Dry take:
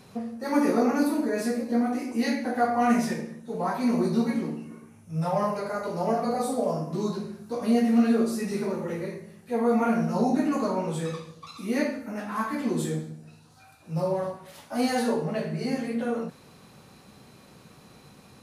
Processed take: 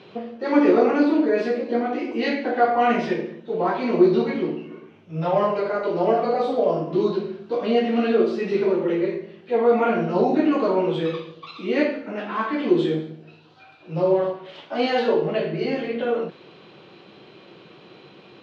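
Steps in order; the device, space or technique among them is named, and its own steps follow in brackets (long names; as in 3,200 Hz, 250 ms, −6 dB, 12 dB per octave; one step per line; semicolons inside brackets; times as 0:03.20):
kitchen radio (loudspeaker in its box 210–3,700 Hz, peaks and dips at 240 Hz −9 dB, 350 Hz +9 dB, 840 Hz −4 dB, 1,200 Hz −3 dB, 1,800 Hz −3 dB, 3,100 Hz +7 dB)
level +7 dB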